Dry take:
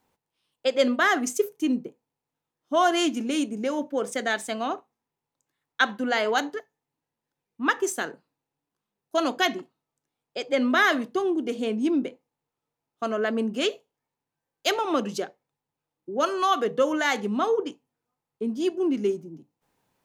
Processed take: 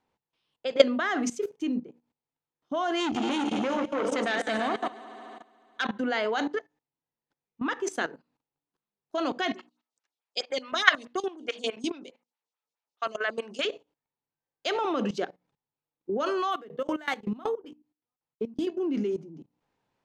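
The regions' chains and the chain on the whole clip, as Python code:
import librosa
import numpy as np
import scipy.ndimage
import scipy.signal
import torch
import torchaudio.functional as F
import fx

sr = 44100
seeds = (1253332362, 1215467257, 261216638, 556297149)

y = fx.chain(x, sr, fx.reverse_delay(ms=148, wet_db=-9),
    fx.echo_heads(ms=72, heads='second and third', feedback_pct=56, wet_db=-13),
    fx.transformer_sat(knee_hz=2800.0), at=(3.0, 5.85))
y = fx.chain(y, sr, fx.weighting(curve='ITU-R 468'),
    fx.stagger_phaser(hz=4.7), at=(9.54, 13.65))
y = fx.chain(y, sr, fx.resample_bad(factor=3, down='none', up='hold'),
    fx.tremolo_decay(direction='decaying', hz=5.3, depth_db=23), at=(16.51, 18.67))
y = scipy.signal.sosfilt(scipy.signal.butter(2, 4900.0, 'lowpass', fs=sr, output='sos'), y)
y = fx.hum_notches(y, sr, base_hz=60, count=5)
y = fx.level_steps(y, sr, step_db=17)
y = y * librosa.db_to_amplitude(6.5)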